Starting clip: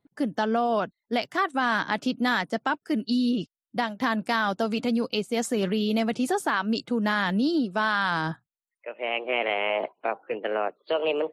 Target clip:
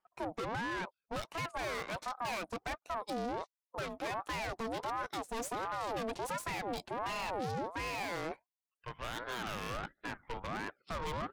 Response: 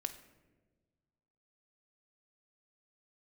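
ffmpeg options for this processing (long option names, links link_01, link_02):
-af "aeval=exprs='(tanh(50.1*val(0)+0.8)-tanh(0.8))/50.1':channel_layout=same,aeval=exprs='val(0)*sin(2*PI*740*n/s+740*0.4/1.4*sin(2*PI*1.4*n/s))':channel_layout=same"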